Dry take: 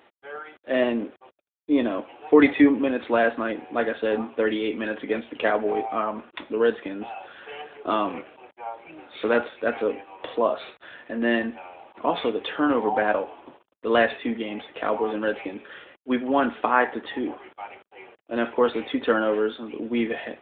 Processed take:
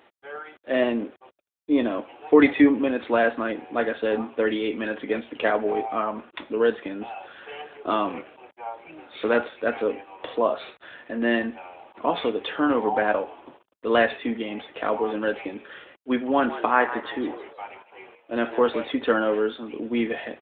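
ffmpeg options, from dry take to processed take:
ffmpeg -i in.wav -filter_complex "[0:a]asplit=3[link_01][link_02][link_03];[link_01]afade=type=out:start_time=16.48:duration=0.02[link_04];[link_02]asplit=4[link_05][link_06][link_07][link_08];[link_06]adelay=158,afreqshift=99,volume=-13dB[link_09];[link_07]adelay=316,afreqshift=198,volume=-22.4dB[link_10];[link_08]adelay=474,afreqshift=297,volume=-31.7dB[link_11];[link_05][link_09][link_10][link_11]amix=inputs=4:normalize=0,afade=type=in:start_time=16.48:duration=0.02,afade=type=out:start_time=18.9:duration=0.02[link_12];[link_03]afade=type=in:start_time=18.9:duration=0.02[link_13];[link_04][link_12][link_13]amix=inputs=3:normalize=0" out.wav

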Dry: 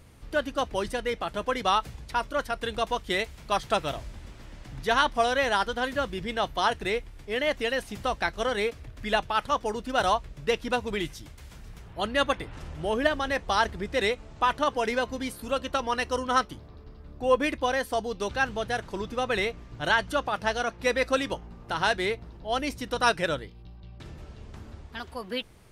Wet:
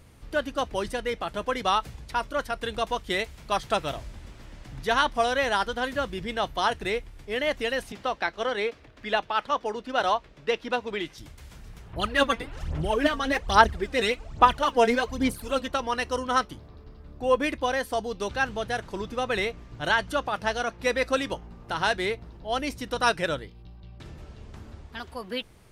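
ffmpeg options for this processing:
ffmpeg -i in.wav -filter_complex "[0:a]asettb=1/sr,asplit=3[link_01][link_02][link_03];[link_01]atrim=end=7.924[link_04];[link_02]atrim=start=7.92:end=11.18,asetpts=PTS-STARTPTS,afade=type=in:duration=0.004:curve=qsin,afade=type=out:start_time=3.256:duration=0.004:curve=qsin,acrossover=split=210 5600:gain=0.224 1 0.224[link_05][link_06][link_07];[link_05][link_06][link_07]amix=inputs=3:normalize=0[link_08];[link_03]atrim=start=11.176[link_09];[link_04][link_08]acrossfade=duration=0.004:curve1=hsin:curve2=qsin[link_10];[link_10][link_09]acrossfade=duration=0.004:curve1=qsin:curve2=hsin,asettb=1/sr,asplit=3[link_11][link_12][link_13];[link_11]atrim=end=11.934[link_14];[link_12]atrim=start=11.93:end=15.68,asetpts=PTS-STARTPTS,afade=type=in:duration=0.004:curve=qsin,afade=type=out:start_time=3.746:duration=0.004:curve=qsin,aphaser=in_gain=1:out_gain=1:delay=4.4:decay=0.66:speed=1.2:type=sinusoidal[link_15];[link_13]atrim=start=15.676[link_16];[link_14][link_15]acrossfade=duration=0.004:curve1=hsin:curve2=qsin[link_17];[link_17][link_16]acrossfade=duration=0.004:curve1=qsin:curve2=hsin" out.wav

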